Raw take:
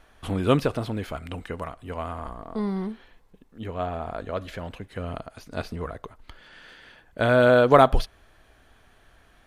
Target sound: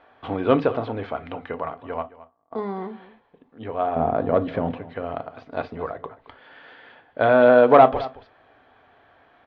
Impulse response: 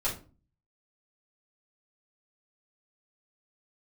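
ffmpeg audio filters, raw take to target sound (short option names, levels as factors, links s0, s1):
-filter_complex "[0:a]asplit=3[s0][s1][s2];[s0]afade=t=out:st=2.01:d=0.02[s3];[s1]agate=range=0.0178:threshold=0.0447:ratio=16:detection=peak,afade=t=in:st=2.01:d=0.02,afade=t=out:st=2.51:d=0.02[s4];[s2]afade=t=in:st=2.51:d=0.02[s5];[s3][s4][s5]amix=inputs=3:normalize=0,asettb=1/sr,asplit=3[s6][s7][s8];[s6]atrim=end=3.964[s9];[s7]atrim=start=3.96:end=4.8,asetpts=PTS-STARTPTS,afade=t=in:d=0.004:c=qsin,afade=t=out:st=0.836:d=0.004:c=qsin,equalizer=f=180:w=0.42:g=15[s10];[s8]atrim=start=4.796[s11];[s9][s10]acrossfade=d=0.004:c1=hsin:c2=qsin[s12];[s12][s11]acrossfade=d=0.004:c1=qsin:c2=hsin,asoftclip=type=tanh:threshold=0.335,highpass=130,equalizer=f=190:t=q:w=4:g=-9,equalizer=f=270:t=q:w=4:g=3,equalizer=f=480:t=q:w=4:g=5,equalizer=f=750:t=q:w=4:g=8,equalizer=f=1100:t=q:w=4:g=4,equalizer=f=2800:t=q:w=4:g=-3,lowpass=f=3400:w=0.5412,lowpass=f=3400:w=1.3066,aecho=1:1:219:0.133,asplit=2[s13][s14];[1:a]atrim=start_sample=2205,atrim=end_sample=4410,asetrate=66150,aresample=44100[s15];[s14][s15]afir=irnorm=-1:irlink=0,volume=0.251[s16];[s13][s16]amix=inputs=2:normalize=0"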